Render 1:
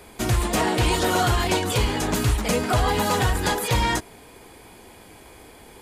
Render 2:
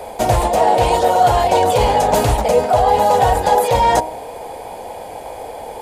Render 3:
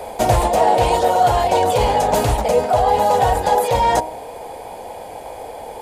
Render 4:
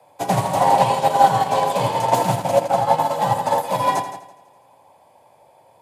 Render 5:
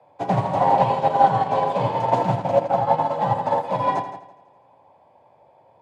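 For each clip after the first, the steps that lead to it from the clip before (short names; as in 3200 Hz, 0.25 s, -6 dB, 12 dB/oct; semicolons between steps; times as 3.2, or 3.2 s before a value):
band shelf 660 Hz +16 dB 1.2 oct; reverse; compressor, threshold -17 dBFS, peak gain reduction 12.5 dB; reverse; de-hum 62.79 Hz, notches 17; gain +7 dB
vocal rider 2 s; gain -2 dB
frequency shift +69 Hz; on a send: multi-head echo 83 ms, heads first and second, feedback 57%, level -7.5 dB; on the sum: upward expander 2.5:1, over -25 dBFS; gain +1 dB
tape spacing loss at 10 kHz 27 dB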